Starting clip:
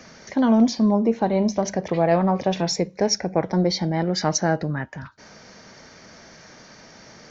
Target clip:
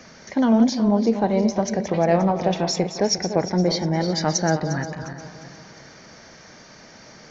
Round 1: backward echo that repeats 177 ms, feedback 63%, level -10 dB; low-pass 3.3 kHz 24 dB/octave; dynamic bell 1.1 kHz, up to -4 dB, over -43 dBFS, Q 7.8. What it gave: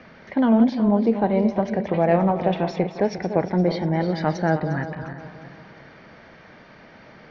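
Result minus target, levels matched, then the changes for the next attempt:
4 kHz band -11.5 dB
remove: low-pass 3.3 kHz 24 dB/octave

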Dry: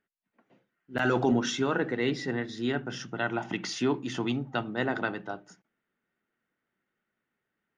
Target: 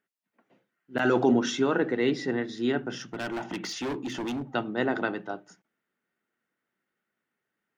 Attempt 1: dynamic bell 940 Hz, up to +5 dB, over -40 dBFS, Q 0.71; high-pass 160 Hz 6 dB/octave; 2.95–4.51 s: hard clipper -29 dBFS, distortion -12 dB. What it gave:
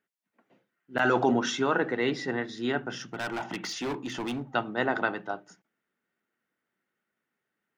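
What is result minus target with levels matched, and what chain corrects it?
1 kHz band +4.0 dB
dynamic bell 330 Hz, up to +5 dB, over -40 dBFS, Q 0.71; high-pass 160 Hz 6 dB/octave; 2.95–4.51 s: hard clipper -29 dBFS, distortion -11 dB

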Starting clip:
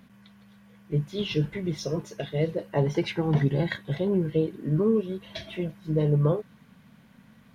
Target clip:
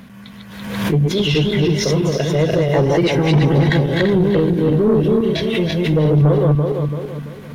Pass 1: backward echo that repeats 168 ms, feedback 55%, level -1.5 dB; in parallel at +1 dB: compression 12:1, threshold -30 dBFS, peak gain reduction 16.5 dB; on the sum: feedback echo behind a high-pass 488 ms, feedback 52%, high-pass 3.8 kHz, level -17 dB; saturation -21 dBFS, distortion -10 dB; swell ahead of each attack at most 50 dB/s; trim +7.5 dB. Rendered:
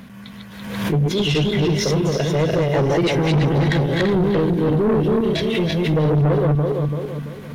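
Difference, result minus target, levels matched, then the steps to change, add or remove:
saturation: distortion +6 dB
change: saturation -15 dBFS, distortion -16 dB

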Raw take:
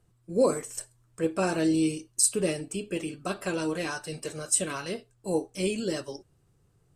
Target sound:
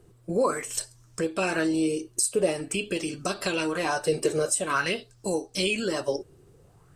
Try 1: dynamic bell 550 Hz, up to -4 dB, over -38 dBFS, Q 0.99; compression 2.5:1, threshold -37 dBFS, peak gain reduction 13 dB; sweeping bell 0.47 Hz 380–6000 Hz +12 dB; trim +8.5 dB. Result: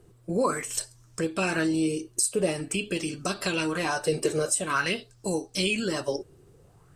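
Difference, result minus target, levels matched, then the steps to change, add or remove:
125 Hz band +3.0 dB
change: dynamic bell 150 Hz, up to -4 dB, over -38 dBFS, Q 0.99

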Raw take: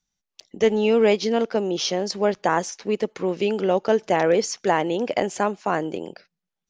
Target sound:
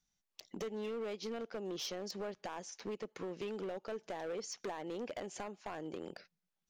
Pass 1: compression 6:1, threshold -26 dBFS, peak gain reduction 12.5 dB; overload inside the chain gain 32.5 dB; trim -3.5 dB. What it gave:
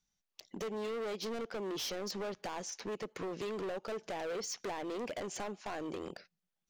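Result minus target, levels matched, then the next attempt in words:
compression: peak gain reduction -6.5 dB
compression 6:1, threshold -34 dBFS, peak gain reduction 19 dB; overload inside the chain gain 32.5 dB; trim -3.5 dB

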